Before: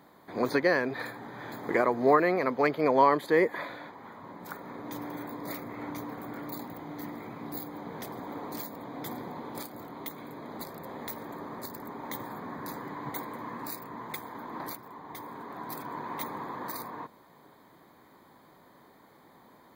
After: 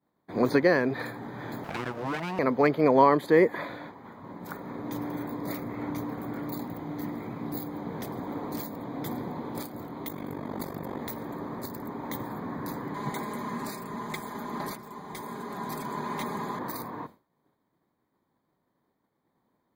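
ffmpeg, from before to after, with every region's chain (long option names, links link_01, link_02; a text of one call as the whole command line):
ffmpeg -i in.wav -filter_complex "[0:a]asettb=1/sr,asplit=3[link_01][link_02][link_03];[link_01]atrim=end=1.644[link_04];[link_02]atrim=start=1.64:end=2.39,asetpts=PTS-STARTPTS,afade=type=in:duration=0.004:curve=qsin,afade=type=out:start_time=0.746:duration=0.004:curve=qsin,aeval=exprs='abs(val(0))':channel_layout=same,highpass=180,acompressor=threshold=-34dB:ratio=2.5:attack=3.2:release=140:knee=1:detection=peak[link_05];[link_03]atrim=start=2.386[link_06];[link_04][link_05]acrossfade=duration=0.004:curve1=hsin:curve2=qsin[link_07];[link_07][link_06]acrossfade=duration=0.004:curve1=qsin:curve2=hsin,asettb=1/sr,asplit=3[link_08][link_09][link_10];[link_08]atrim=end=10.084[link_11];[link_09]atrim=start=10.08:end=10.99,asetpts=PTS-STARTPTS,afade=type=in:duration=0.004:curve=qsin,afade=type=out:start_time=0.906:duration=0.004:curve=qsin,bandreject=frequency=4000:width=12,acontrast=27,tremolo=f=48:d=0.788[link_12];[link_10]atrim=start=10.986[link_13];[link_11][link_12]acrossfade=duration=0.004:curve1=hsin:curve2=qsin[link_14];[link_14][link_13]acrossfade=duration=0.004:curve1=qsin:curve2=hsin,asettb=1/sr,asplit=3[link_15][link_16][link_17];[link_15]atrim=end=12.944[link_18];[link_16]atrim=start=12.94:end=16.59,asetpts=PTS-STARTPTS,afade=type=in:duration=0.004:curve=qsin,afade=type=out:start_time=3.646:duration=0.004:curve=qsin,acrossover=split=3600[link_19][link_20];[link_20]acompressor=threshold=-51dB:ratio=4:attack=1:release=60[link_21];[link_19][link_21]amix=inputs=2:normalize=0,equalizer=frequency=7900:width_type=o:width=1.8:gain=14.5,aecho=1:1:4.9:0.53,atrim=end_sample=160965[link_22];[link_17]atrim=start=16.586[link_23];[link_18][link_22]acrossfade=duration=0.004:curve1=hsin:curve2=qsin[link_24];[link_24][link_23]acrossfade=duration=0.004:curve1=qsin:curve2=hsin,agate=range=-33dB:threshold=-43dB:ratio=3:detection=peak,lowshelf=frequency=390:gain=8.5" out.wav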